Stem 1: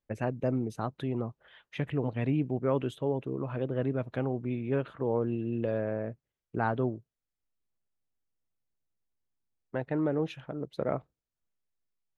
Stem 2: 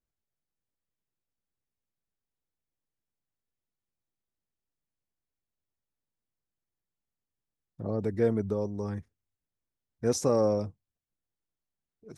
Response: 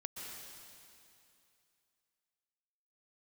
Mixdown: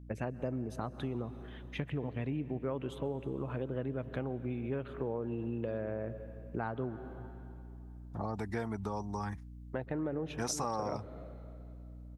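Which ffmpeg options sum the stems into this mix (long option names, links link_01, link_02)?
-filter_complex "[0:a]aeval=exprs='val(0)+0.00398*(sin(2*PI*60*n/s)+sin(2*PI*2*60*n/s)/2+sin(2*PI*3*60*n/s)/3+sin(2*PI*4*60*n/s)/4+sin(2*PI*5*60*n/s)/5)':channel_layout=same,volume=-2dB,asplit=2[link_01][link_02];[link_02]volume=-9.5dB[link_03];[1:a]lowshelf=frequency=650:width_type=q:width=3:gain=-7.5,acontrast=79,adelay=350,volume=-1.5dB[link_04];[2:a]atrim=start_sample=2205[link_05];[link_03][link_05]afir=irnorm=-1:irlink=0[link_06];[link_01][link_04][link_06]amix=inputs=3:normalize=0,acompressor=threshold=-33dB:ratio=4"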